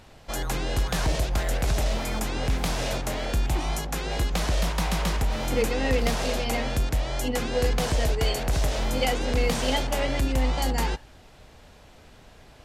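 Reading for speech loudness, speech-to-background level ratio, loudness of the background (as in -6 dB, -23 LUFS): -30.0 LUFS, -2.0 dB, -28.0 LUFS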